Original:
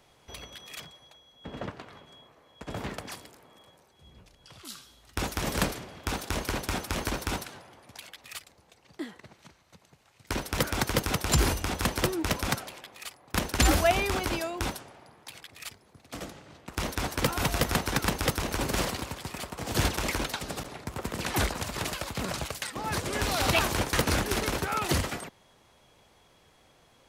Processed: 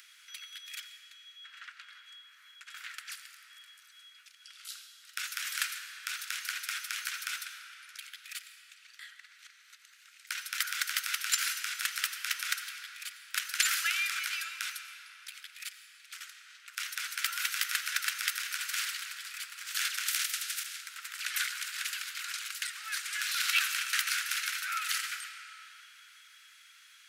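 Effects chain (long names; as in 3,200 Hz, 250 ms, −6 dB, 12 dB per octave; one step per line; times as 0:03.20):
0:20.06–0:20.81: ceiling on every frequency bin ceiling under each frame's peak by 26 dB
Chebyshev high-pass filter 1,400 Hz, order 5
upward compression, threshold −48 dBFS
convolution reverb RT60 3.3 s, pre-delay 50 ms, DRR 8 dB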